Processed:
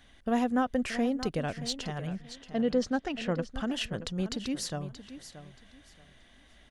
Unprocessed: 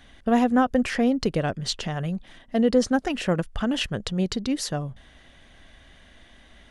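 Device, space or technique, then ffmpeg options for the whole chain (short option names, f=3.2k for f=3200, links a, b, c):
exciter from parts: -filter_complex "[0:a]asettb=1/sr,asplit=3[a][b][c];[a]atrim=end=2.074[d];[b]atrim=start=2.07:end=3.46,asetpts=PTS-STARTPTS,afade=t=in:d=0.004:c=qsin,afade=t=out:st=1.386:d=0.004:c=qsin,lowpass=5.2k[e];[c]atrim=start=3.456[f];[d][e]acrossfade=d=0.004:c1=hsin:c2=qsin[g];[g][f]acrossfade=d=0.004:c1=qsin:c2=hsin,aecho=1:1:628|1256|1884:0.224|0.0537|0.0129,asplit=2[h][i];[i]highpass=f=4.9k:p=1,asoftclip=type=tanh:threshold=-26.5dB,volume=-5.5dB[j];[h][j]amix=inputs=2:normalize=0,volume=-7.5dB"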